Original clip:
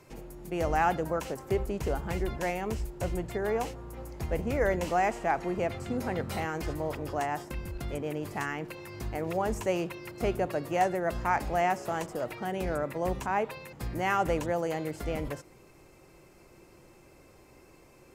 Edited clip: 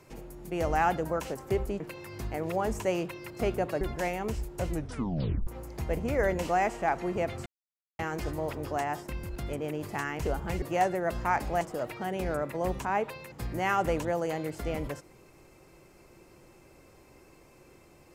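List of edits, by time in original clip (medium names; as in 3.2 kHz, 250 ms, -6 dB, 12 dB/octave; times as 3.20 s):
1.80–2.23 s: swap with 8.61–10.62 s
3.11 s: tape stop 0.78 s
5.88–6.41 s: mute
11.61–12.02 s: delete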